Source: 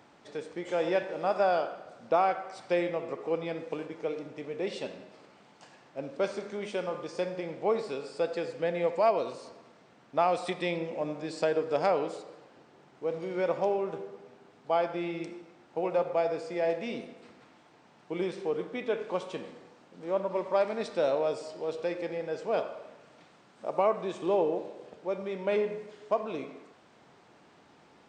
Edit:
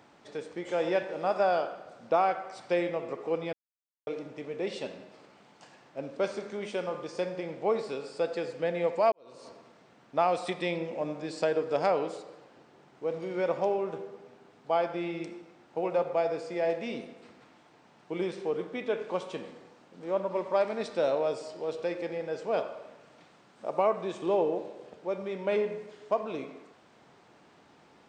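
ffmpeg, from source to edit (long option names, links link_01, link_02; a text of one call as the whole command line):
ffmpeg -i in.wav -filter_complex "[0:a]asplit=4[link_01][link_02][link_03][link_04];[link_01]atrim=end=3.53,asetpts=PTS-STARTPTS,afade=type=out:start_time=3.526:duration=0.004:curve=hsin[link_05];[link_02]atrim=start=3.53:end=4.07,asetpts=PTS-STARTPTS,volume=0[link_06];[link_03]atrim=start=4.07:end=9.12,asetpts=PTS-STARTPTS,afade=type=in:duration=0.004:curve=hsin,afade=type=out:start_time=5.046:duration=0.004:curve=hsin[link_07];[link_04]atrim=start=9.12,asetpts=PTS-STARTPTS,afade=type=in:duration=0.36:curve=qua[link_08];[link_05][link_06][link_07][link_08]concat=n=4:v=0:a=1" out.wav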